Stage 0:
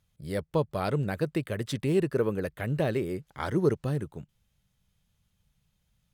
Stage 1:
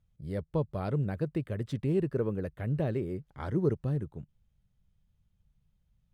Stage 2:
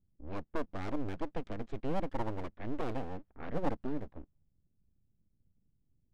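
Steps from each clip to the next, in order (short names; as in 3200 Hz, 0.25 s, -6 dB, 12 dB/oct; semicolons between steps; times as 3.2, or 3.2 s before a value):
tilt -2.5 dB/oct; gain -7.5 dB
LPF 3700 Hz; full-wave rectifier; low-pass opened by the level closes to 450 Hz, open at -28 dBFS; gain -2.5 dB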